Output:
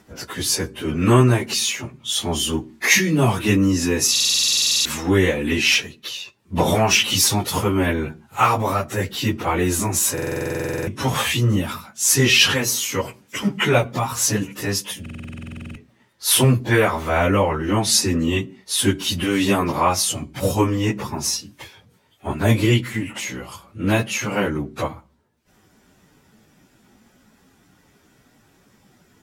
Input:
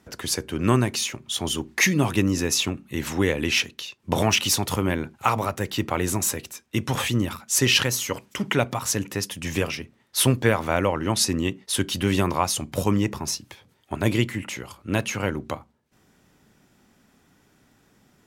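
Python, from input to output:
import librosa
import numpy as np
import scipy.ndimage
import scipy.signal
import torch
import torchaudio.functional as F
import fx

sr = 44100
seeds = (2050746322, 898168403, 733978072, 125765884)

y = fx.stretch_vocoder_free(x, sr, factor=1.6)
y = fx.buffer_glitch(y, sr, at_s=(4.11, 10.13, 15.01), block=2048, repeats=15)
y = F.gain(torch.from_numpy(y), 7.0).numpy()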